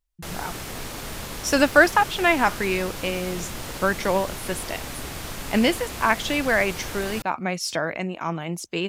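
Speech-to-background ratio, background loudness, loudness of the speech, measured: 10.0 dB, -33.5 LUFS, -23.5 LUFS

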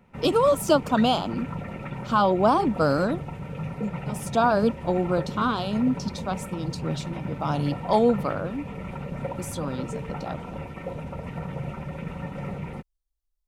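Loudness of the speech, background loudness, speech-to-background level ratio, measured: -25.0 LUFS, -35.0 LUFS, 10.0 dB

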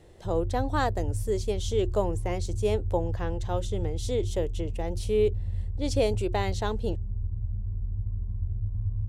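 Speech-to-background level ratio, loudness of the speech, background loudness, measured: 3.0 dB, -30.5 LUFS, -33.5 LUFS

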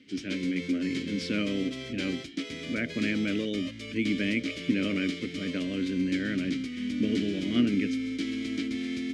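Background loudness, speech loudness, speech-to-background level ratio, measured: -35.5 LUFS, -31.0 LUFS, 4.5 dB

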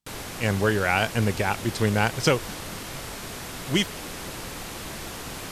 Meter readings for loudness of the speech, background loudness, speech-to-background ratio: -25.0 LUFS, -35.0 LUFS, 10.0 dB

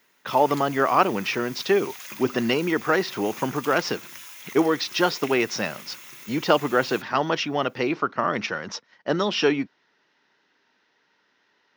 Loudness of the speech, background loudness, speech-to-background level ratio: -24.0 LUFS, -39.5 LUFS, 15.5 dB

